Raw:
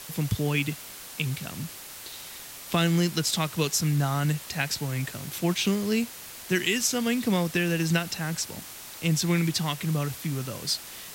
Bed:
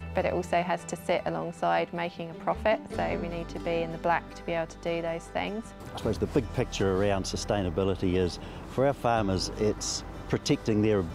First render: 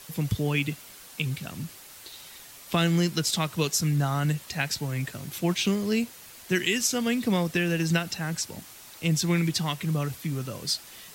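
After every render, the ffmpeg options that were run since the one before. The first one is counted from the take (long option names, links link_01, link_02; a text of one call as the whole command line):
ffmpeg -i in.wav -af "afftdn=noise_reduction=6:noise_floor=-43" out.wav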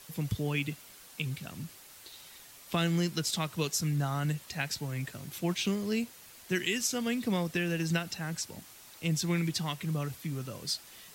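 ffmpeg -i in.wav -af "volume=-5.5dB" out.wav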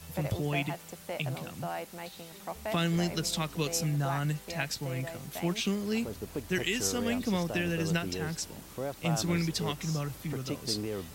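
ffmpeg -i in.wav -i bed.wav -filter_complex "[1:a]volume=-11dB[link_01];[0:a][link_01]amix=inputs=2:normalize=0" out.wav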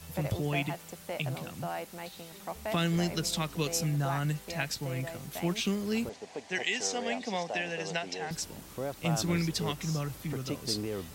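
ffmpeg -i in.wav -filter_complex "[0:a]asettb=1/sr,asplit=3[link_01][link_02][link_03];[link_01]atrim=end=6.094[link_04];[link_02]atrim=start=6.09:end=8.31,asetpts=PTS-STARTPTS,afade=type=in:duration=0.004:curve=qsin,afade=type=out:start_time=2.216:duration=0.004:curve=qsin,highpass=320,equalizer=frequency=330:width_type=q:width=4:gain=-8,equalizer=frequency=760:width_type=q:width=4:gain=9,equalizer=frequency=1300:width_type=q:width=4:gain=-8,equalizer=frequency=2000:width_type=q:width=4:gain=4,lowpass=frequency=7400:width=0.5412,lowpass=frequency=7400:width=1.3066[link_05];[link_03]atrim=start=8.306[link_06];[link_04][link_05]acrossfade=duration=0.004:curve1=hsin:curve2=qsin[link_07];[link_07][link_06]acrossfade=duration=0.004:curve1=qsin:curve2=hsin" out.wav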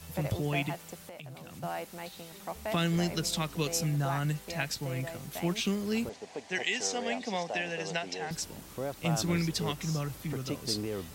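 ffmpeg -i in.wav -filter_complex "[0:a]asplit=3[link_01][link_02][link_03];[link_01]afade=type=out:start_time=0.98:duration=0.02[link_04];[link_02]acompressor=threshold=-42dB:ratio=6:attack=3.2:release=140:knee=1:detection=peak,afade=type=in:start_time=0.98:duration=0.02,afade=type=out:start_time=1.62:duration=0.02[link_05];[link_03]afade=type=in:start_time=1.62:duration=0.02[link_06];[link_04][link_05][link_06]amix=inputs=3:normalize=0" out.wav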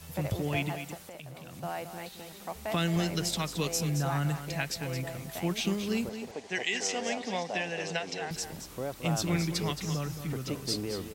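ffmpeg -i in.wav -af "aecho=1:1:221:0.335" out.wav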